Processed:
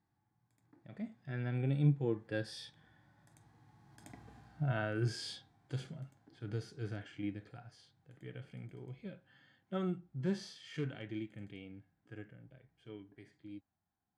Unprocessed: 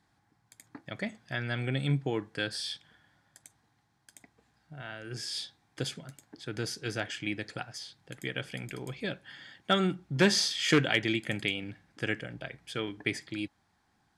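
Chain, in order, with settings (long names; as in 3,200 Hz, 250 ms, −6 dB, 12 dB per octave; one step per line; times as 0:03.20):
source passing by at 0:04.20, 9 m/s, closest 2.6 metres
tilt shelving filter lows +5.5 dB, about 1,400 Hz
harmonic and percussive parts rebalanced percussive −15 dB
level +13 dB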